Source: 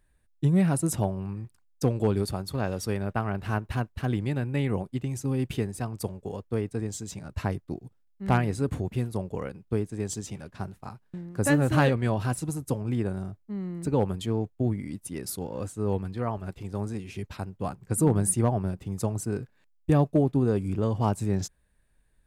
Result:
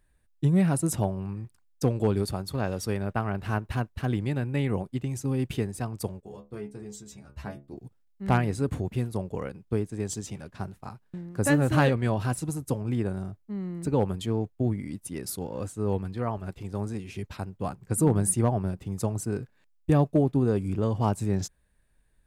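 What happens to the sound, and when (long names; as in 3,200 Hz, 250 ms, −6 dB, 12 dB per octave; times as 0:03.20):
0:06.20–0:07.77: stiff-string resonator 68 Hz, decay 0.29 s, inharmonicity 0.002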